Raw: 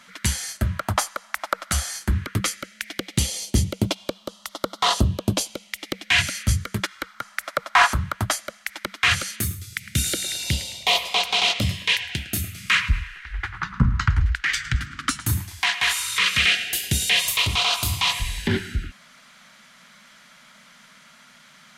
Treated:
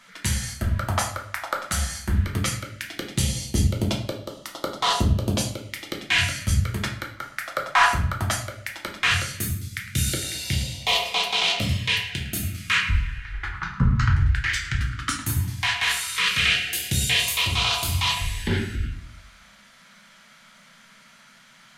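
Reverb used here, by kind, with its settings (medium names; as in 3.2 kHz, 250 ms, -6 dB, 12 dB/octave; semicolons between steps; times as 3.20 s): simulated room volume 69 m³, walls mixed, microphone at 0.68 m; trim -4 dB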